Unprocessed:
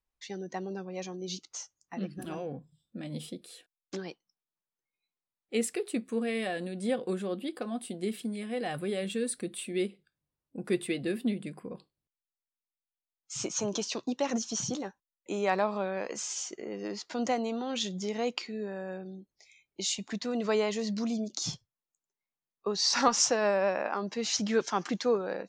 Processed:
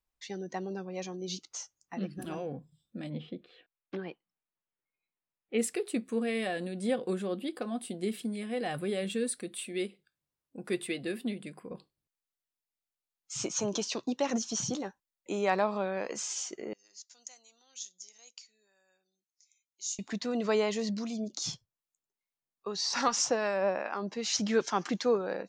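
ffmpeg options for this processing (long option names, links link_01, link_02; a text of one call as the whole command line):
ffmpeg -i in.wav -filter_complex "[0:a]asplit=3[link_01][link_02][link_03];[link_01]afade=type=out:start_time=3.09:duration=0.02[link_04];[link_02]lowpass=frequency=3000:width=0.5412,lowpass=frequency=3000:width=1.3066,afade=type=in:start_time=3.09:duration=0.02,afade=type=out:start_time=5.58:duration=0.02[link_05];[link_03]afade=type=in:start_time=5.58:duration=0.02[link_06];[link_04][link_05][link_06]amix=inputs=3:normalize=0,asettb=1/sr,asplit=3[link_07][link_08][link_09];[link_07]atrim=end=9.284[link_10];[link_08]atrim=start=9.28:end=11.71,asetpts=PTS-STARTPTS,afade=type=in:duration=0.004:curve=qsin,afade=type=out:start_time=2.426:duration=0.004:curve=qsin,lowshelf=frequency=380:gain=-6.5[link_11];[link_09]atrim=start=11.706[link_12];[link_10][link_11]acrossfade=duration=0.004:curve1=hsin:curve2=qsin[link_13];[link_13][link_12]acrossfade=duration=0.004:curve1=qsin:curve2=hsin,asettb=1/sr,asplit=3[link_14][link_15][link_16];[link_14]atrim=end=16.734[link_17];[link_15]atrim=start=16.73:end=19.99,asetpts=PTS-STARTPTS,afade=type=in:duration=0.004:curve=qsin,afade=type=out:start_time=3.256:duration=0.004:curve=qsin,bandpass=frequency=6500:width_type=q:width=4.4[link_18];[link_16]atrim=start=19.986[link_19];[link_17][link_18]acrossfade=duration=0.004:curve1=hsin:curve2=qsin[link_20];[link_20][link_19]acrossfade=duration=0.004:curve1=qsin:curve2=hsin,asettb=1/sr,asplit=3[link_21][link_22][link_23];[link_21]atrim=end=20.894[link_24];[link_22]atrim=start=20.89:end=24.35,asetpts=PTS-STARTPTS,afade=type=in:duration=0.004:curve=qsin,afade=type=out:start_time=3.456:duration=0.004:curve=qsin,acrossover=split=1200[link_25][link_26];[link_25]aeval=exprs='val(0)*(1-0.5/2+0.5/2*cos(2*PI*2.5*n/s))':channel_layout=same[link_27];[link_26]aeval=exprs='val(0)*(1-0.5/2-0.5/2*cos(2*PI*2.5*n/s))':channel_layout=same[link_28];[link_27][link_28]amix=inputs=2:normalize=0[link_29];[link_23]atrim=start=24.346[link_30];[link_24][link_29]acrossfade=duration=0.004:curve1=hsin:curve2=qsin[link_31];[link_31][link_30]acrossfade=duration=0.004:curve1=qsin:curve2=hsin" out.wav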